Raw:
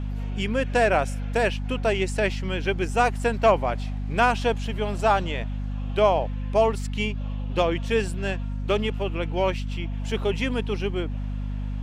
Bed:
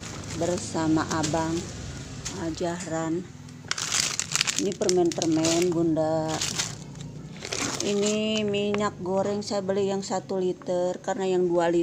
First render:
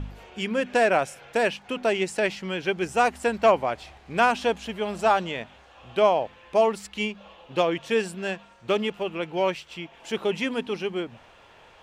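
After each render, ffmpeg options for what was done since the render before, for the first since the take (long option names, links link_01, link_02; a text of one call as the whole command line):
ffmpeg -i in.wav -af "bandreject=frequency=50:width_type=h:width=4,bandreject=frequency=100:width_type=h:width=4,bandreject=frequency=150:width_type=h:width=4,bandreject=frequency=200:width_type=h:width=4,bandreject=frequency=250:width_type=h:width=4" out.wav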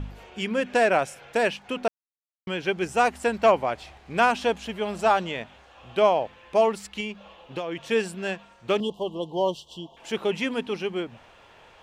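ffmpeg -i in.wav -filter_complex "[0:a]asettb=1/sr,asplit=3[link_01][link_02][link_03];[link_01]atrim=end=7.004[link_04];[link_02]atrim=start=7:end=7.84,asetpts=PTS-STARTPTS,afade=type=in:duration=0.004:curve=qsin,afade=type=out:start_time=0.836:duration=0.004:curve=qsin,acompressor=threshold=-27dB:ratio=6:attack=3.2:release=140:knee=1:detection=peak[link_05];[link_03]atrim=start=7.836[link_06];[link_04][link_05]acrossfade=duration=0.004:curve1=hsin:curve2=qsin[link_07];[link_07][link_06]acrossfade=duration=0.004:curve1=qsin:curve2=hsin,asettb=1/sr,asplit=3[link_08][link_09][link_10];[link_08]atrim=end=8.804[link_11];[link_09]atrim=start=8.8:end=9.97,asetpts=PTS-STARTPTS,afade=type=in:duration=0.004:curve=qsin,afade=type=out:start_time=1.166:duration=0.004:curve=qsin,asuperstop=centerf=1800:order=20:qfactor=1[link_12];[link_10]atrim=start=9.966[link_13];[link_11][link_12]acrossfade=duration=0.004:curve1=hsin:curve2=qsin[link_14];[link_14][link_13]acrossfade=duration=0.004:curve1=qsin:curve2=hsin,asplit=3[link_15][link_16][link_17];[link_15]atrim=end=1.88,asetpts=PTS-STARTPTS,afade=type=out:start_time=1.876:duration=0.004:curve=hsin[link_18];[link_16]atrim=start=1.88:end=2.47,asetpts=PTS-STARTPTS,volume=0[link_19];[link_17]atrim=start=2.47,asetpts=PTS-STARTPTS,afade=type=in:duration=0.004:curve=hsin[link_20];[link_18][link_19][link_20]concat=n=3:v=0:a=1" out.wav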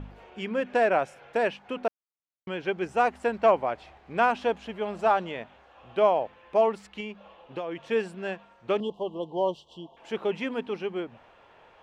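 ffmpeg -i in.wav -af "lowpass=frequency=1400:poles=1,lowshelf=frequency=220:gain=-8" out.wav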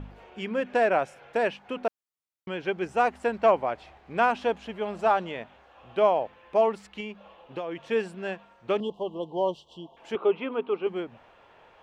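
ffmpeg -i in.wav -filter_complex "[0:a]asettb=1/sr,asplit=3[link_01][link_02][link_03];[link_01]atrim=end=10.154[link_04];[link_02]atrim=start=10.15:end=10.87,asetpts=PTS-STARTPTS,afade=type=in:duration=0.004:curve=qsin,afade=type=out:start_time=0.716:duration=0.004:curve=qsin,highpass=130,equalizer=frequency=140:width_type=q:width=4:gain=-10,equalizer=frequency=210:width_type=q:width=4:gain=-6,equalizer=frequency=410:width_type=q:width=4:gain=6,equalizer=frequency=1200:width_type=q:width=4:gain=8,equalizer=frequency=1800:width_type=q:width=4:gain=-10,lowpass=frequency=3200:width=0.5412,lowpass=frequency=3200:width=1.3066[link_05];[link_03]atrim=start=10.866[link_06];[link_04][link_05]acrossfade=duration=0.004:curve1=hsin:curve2=qsin[link_07];[link_07][link_06]acrossfade=duration=0.004:curve1=qsin:curve2=hsin" out.wav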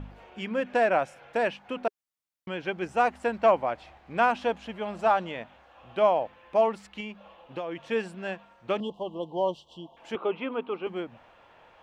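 ffmpeg -i in.wav -af "equalizer=frequency=410:width=7.1:gain=-7" out.wav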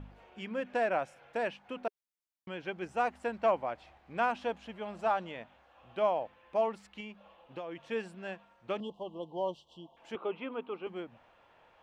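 ffmpeg -i in.wav -af "volume=-7dB" out.wav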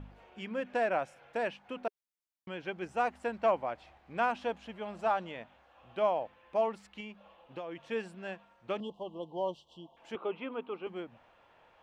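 ffmpeg -i in.wav -af anull out.wav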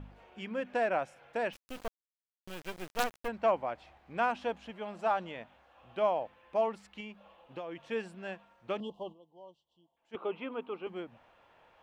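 ffmpeg -i in.wav -filter_complex "[0:a]asplit=3[link_01][link_02][link_03];[link_01]afade=type=out:start_time=1.52:duration=0.02[link_04];[link_02]acrusher=bits=5:dc=4:mix=0:aa=0.000001,afade=type=in:start_time=1.52:duration=0.02,afade=type=out:start_time=3.27:duration=0.02[link_05];[link_03]afade=type=in:start_time=3.27:duration=0.02[link_06];[link_04][link_05][link_06]amix=inputs=3:normalize=0,asettb=1/sr,asplit=3[link_07][link_08][link_09];[link_07]atrim=end=4.704[link_10];[link_08]atrim=start=4.7:end=5.11,asetpts=PTS-STARTPTS,afade=type=in:duration=0.004:curve=qsin,afade=type=out:start_time=0.406:duration=0.004:curve=qsin,equalizer=frequency=65:width=1.5:gain=-14[link_11];[link_09]atrim=start=5.106[link_12];[link_10][link_11]acrossfade=duration=0.004:curve1=hsin:curve2=qsin[link_13];[link_13][link_12]acrossfade=duration=0.004:curve1=qsin:curve2=hsin,asplit=3[link_14][link_15][link_16];[link_14]atrim=end=9.26,asetpts=PTS-STARTPTS,afade=type=out:start_time=9.12:duration=0.14:curve=exp:silence=0.11885[link_17];[link_15]atrim=start=9.26:end=10.01,asetpts=PTS-STARTPTS,volume=-18.5dB[link_18];[link_16]atrim=start=10.01,asetpts=PTS-STARTPTS,afade=type=in:duration=0.14:curve=exp:silence=0.11885[link_19];[link_17][link_18][link_19]concat=n=3:v=0:a=1" out.wav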